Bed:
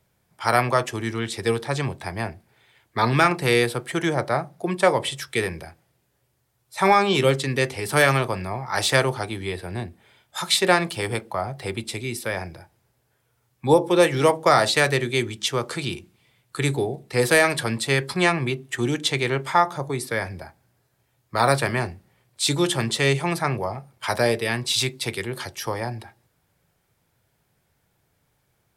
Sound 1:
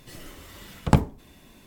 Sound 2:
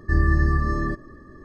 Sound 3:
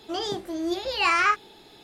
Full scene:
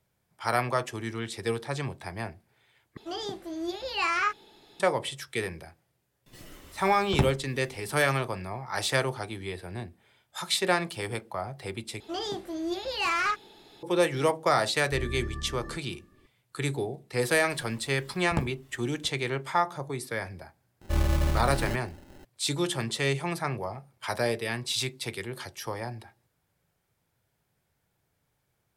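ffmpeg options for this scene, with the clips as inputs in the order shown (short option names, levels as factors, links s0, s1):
-filter_complex "[3:a]asplit=2[s0][s1];[1:a]asplit=2[s2][s3];[2:a]asplit=2[s4][s5];[0:a]volume=0.447[s6];[s2]acontrast=78[s7];[s1]asoftclip=type=tanh:threshold=0.119[s8];[s3]aecho=1:1:732:0.355[s9];[s5]acrusher=samples=38:mix=1:aa=0.000001[s10];[s6]asplit=3[s11][s12][s13];[s11]atrim=end=2.974[s14];[s0]atrim=end=1.83,asetpts=PTS-STARTPTS,volume=0.531[s15];[s12]atrim=start=4.796:end=12.004[s16];[s8]atrim=end=1.83,asetpts=PTS-STARTPTS,volume=0.708[s17];[s13]atrim=start=13.826[s18];[s7]atrim=end=1.66,asetpts=PTS-STARTPTS,volume=0.251,afade=t=in:d=0.004:c=hsin,afade=t=out:st=1.656:d=0.004:c=hsin,adelay=276066S[s19];[s4]atrim=end=1.44,asetpts=PTS-STARTPTS,volume=0.15,afade=t=in:d=0.004:c=hsin,afade=t=out:st=1.436:d=0.004:c=hsin,adelay=14830[s20];[s9]atrim=end=1.66,asetpts=PTS-STARTPTS,volume=0.251,afade=t=in:d=0.004:c=hsin,afade=t=out:st=1.656:d=0.004:c=hsin,adelay=17440[s21];[s10]atrim=end=1.44,asetpts=PTS-STARTPTS,volume=0.501,afade=t=in:d=0.004:c=hsin,afade=t=out:st=1.436:d=0.004:c=hsin,adelay=20810[s22];[s14][s15]acrossfade=d=0.004:c1=hsin:c2=hsin[s23];[s23][s16]acrossfade=d=0.004:c1=hsin:c2=hsin[s24];[s24][s17]acrossfade=d=0.004:c1=hsin:c2=hsin[s25];[s25][s18]acrossfade=d=0.004:c1=hsin:c2=hsin[s26];[s26][s19][s20][s21][s22]amix=inputs=5:normalize=0"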